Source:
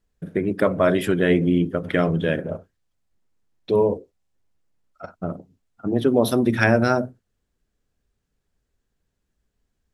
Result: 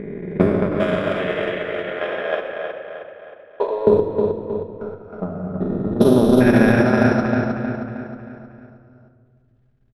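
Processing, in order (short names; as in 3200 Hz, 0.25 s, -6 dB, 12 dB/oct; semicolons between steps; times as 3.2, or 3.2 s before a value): stepped spectrum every 0.4 s; 0.68–3.87 HPF 550 Hz 24 dB/oct; feedback echo 0.314 s, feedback 50%, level -4 dB; transient shaper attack +11 dB, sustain -11 dB; low-pass opened by the level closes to 2400 Hz, open at -13.5 dBFS; reverb RT60 1.8 s, pre-delay 5 ms, DRR 4 dB; maximiser +5 dB; gain -1 dB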